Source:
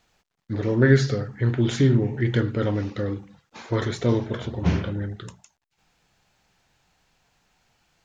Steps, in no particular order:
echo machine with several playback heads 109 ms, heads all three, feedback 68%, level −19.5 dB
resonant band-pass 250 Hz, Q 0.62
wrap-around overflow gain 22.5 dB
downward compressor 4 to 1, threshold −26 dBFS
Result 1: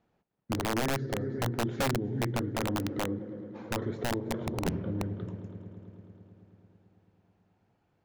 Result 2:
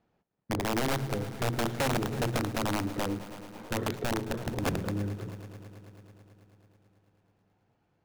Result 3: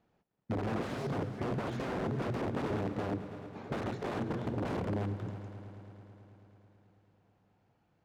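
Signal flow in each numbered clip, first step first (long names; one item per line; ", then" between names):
echo machine with several playback heads, then downward compressor, then resonant band-pass, then wrap-around overflow
resonant band-pass, then downward compressor, then wrap-around overflow, then echo machine with several playback heads
wrap-around overflow, then echo machine with several playback heads, then downward compressor, then resonant band-pass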